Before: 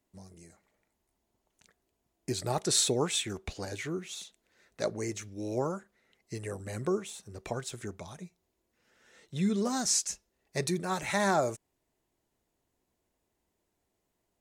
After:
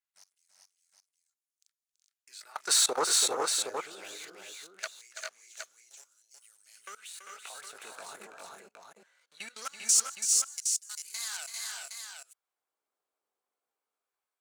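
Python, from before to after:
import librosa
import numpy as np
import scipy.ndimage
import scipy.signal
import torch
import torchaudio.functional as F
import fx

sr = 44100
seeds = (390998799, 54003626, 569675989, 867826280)

y = fx.pitch_glide(x, sr, semitones=2.5, runs='starting unshifted')
y = fx.peak_eq(y, sr, hz=1400.0, db=8.5, octaves=0.49)
y = fx.notch(y, sr, hz=1900.0, q=23.0)
y = fx.leveller(y, sr, passes=2)
y = fx.level_steps(y, sr, step_db=23)
y = fx.filter_lfo_highpass(y, sr, shape='sine', hz=0.21, low_hz=470.0, high_hz=6700.0, q=1.1)
y = fx.echo_multitap(y, sr, ms=(332, 396, 418, 765), db=(-8.5, -5.0, -4.5, -6.0))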